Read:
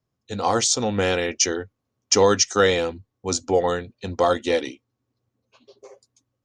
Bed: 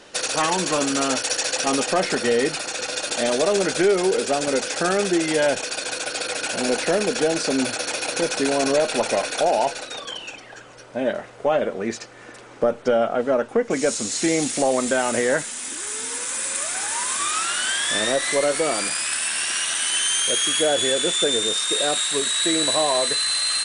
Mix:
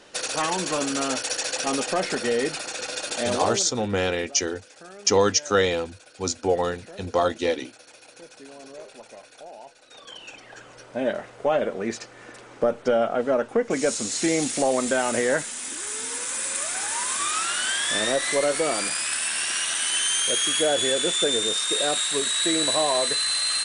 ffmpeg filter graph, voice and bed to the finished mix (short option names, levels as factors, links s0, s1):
-filter_complex "[0:a]adelay=2950,volume=0.75[s0];[1:a]volume=7.08,afade=t=out:st=3.36:d=0.33:silence=0.112202,afade=t=in:st=9.81:d=0.84:silence=0.0891251[s1];[s0][s1]amix=inputs=2:normalize=0"